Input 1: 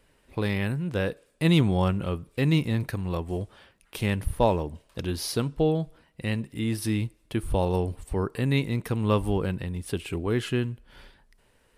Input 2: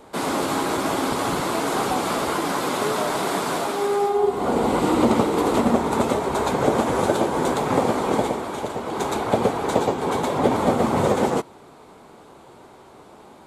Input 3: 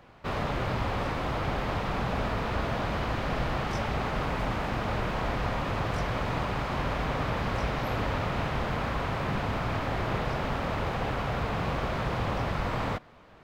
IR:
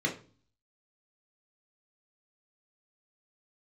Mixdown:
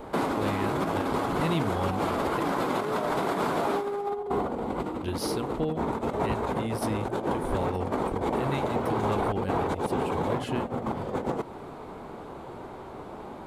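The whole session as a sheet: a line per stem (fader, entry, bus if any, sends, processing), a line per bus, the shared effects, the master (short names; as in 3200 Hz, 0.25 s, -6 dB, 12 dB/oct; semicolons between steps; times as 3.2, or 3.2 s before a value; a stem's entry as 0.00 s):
-1.5 dB, 0.00 s, muted 2.4–5.03, no send, notches 60/120/180 Hz; ending taper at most 160 dB/s
+2.0 dB, 0.00 s, no send, low shelf 60 Hz +9.5 dB; negative-ratio compressor -25 dBFS, ratio -0.5; bell 8100 Hz -12.5 dB 2.4 oct
off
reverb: off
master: compressor 2:1, threshold -28 dBFS, peak gain reduction 7.5 dB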